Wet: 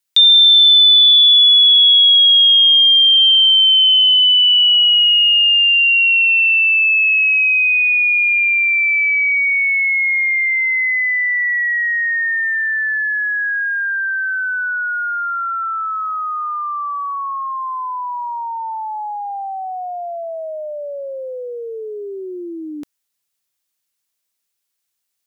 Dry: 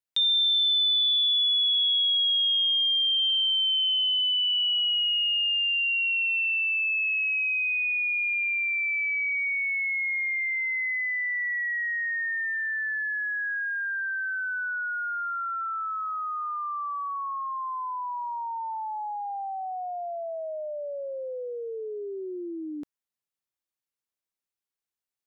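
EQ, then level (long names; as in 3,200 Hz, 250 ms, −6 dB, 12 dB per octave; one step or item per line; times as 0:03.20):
high-shelf EQ 2,100 Hz +10.5 dB
+6.5 dB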